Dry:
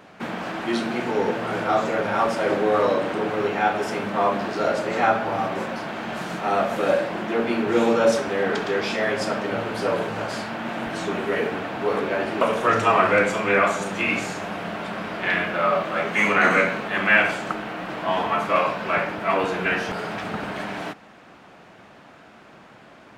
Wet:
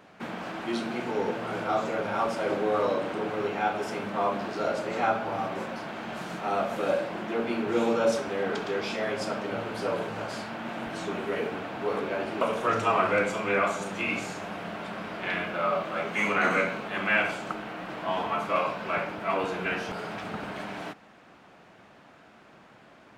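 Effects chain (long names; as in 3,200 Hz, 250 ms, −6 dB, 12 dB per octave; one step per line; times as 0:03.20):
dynamic equaliser 1,800 Hz, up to −6 dB, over −41 dBFS, Q 6.7
level −6 dB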